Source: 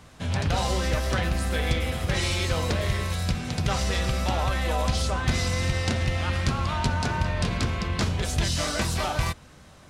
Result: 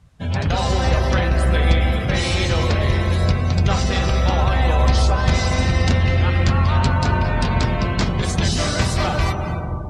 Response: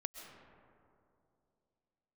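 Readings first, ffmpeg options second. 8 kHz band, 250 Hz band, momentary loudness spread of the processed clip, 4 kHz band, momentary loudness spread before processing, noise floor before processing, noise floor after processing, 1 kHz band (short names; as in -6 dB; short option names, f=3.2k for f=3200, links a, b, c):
+2.0 dB, +7.5 dB, 3 LU, +4.5 dB, 2 LU, -50 dBFS, -25 dBFS, +7.0 dB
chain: -filter_complex "[1:a]atrim=start_sample=2205,asetrate=26019,aresample=44100[a];[0:a][a]afir=irnorm=-1:irlink=0,afftdn=nr=17:nf=-39,volume=5.5dB"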